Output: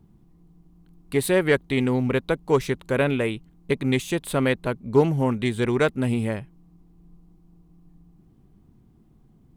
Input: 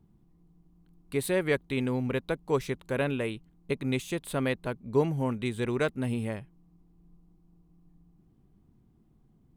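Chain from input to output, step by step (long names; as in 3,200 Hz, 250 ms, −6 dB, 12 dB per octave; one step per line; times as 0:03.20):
highs frequency-modulated by the lows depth 0.13 ms
level +7 dB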